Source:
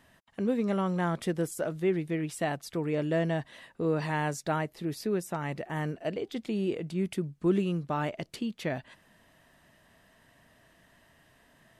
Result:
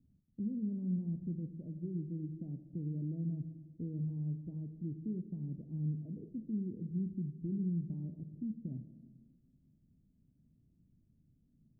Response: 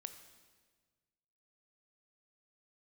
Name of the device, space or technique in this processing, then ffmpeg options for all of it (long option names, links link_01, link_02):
club heard from the street: -filter_complex "[0:a]alimiter=level_in=0.5dB:limit=-24dB:level=0:latency=1,volume=-0.5dB,lowpass=frequency=250:width=0.5412,lowpass=frequency=250:width=1.3066[link_01];[1:a]atrim=start_sample=2205[link_02];[link_01][link_02]afir=irnorm=-1:irlink=0,volume=2.5dB"